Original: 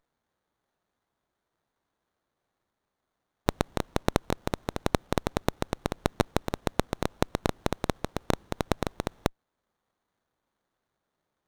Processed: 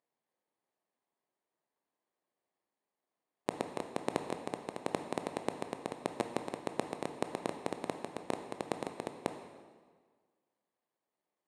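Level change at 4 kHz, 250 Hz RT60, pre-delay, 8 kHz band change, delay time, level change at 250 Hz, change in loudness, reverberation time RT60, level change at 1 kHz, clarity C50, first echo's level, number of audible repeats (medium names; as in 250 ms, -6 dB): -11.0 dB, 1.5 s, 17 ms, -8.5 dB, no echo, -8.5 dB, -8.0 dB, 1.6 s, -7.0 dB, 8.0 dB, no echo, no echo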